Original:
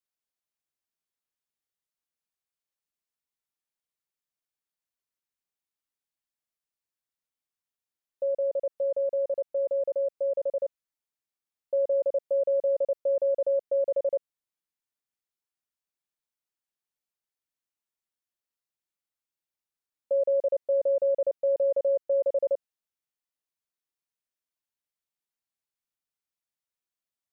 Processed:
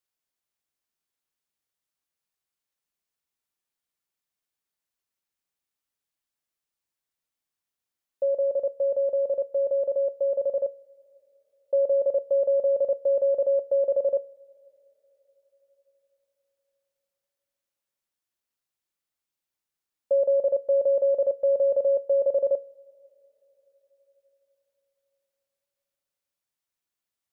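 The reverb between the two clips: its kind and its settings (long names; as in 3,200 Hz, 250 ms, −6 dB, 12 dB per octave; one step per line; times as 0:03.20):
coupled-rooms reverb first 0.45 s, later 4.7 s, from −21 dB, DRR 16.5 dB
level +3.5 dB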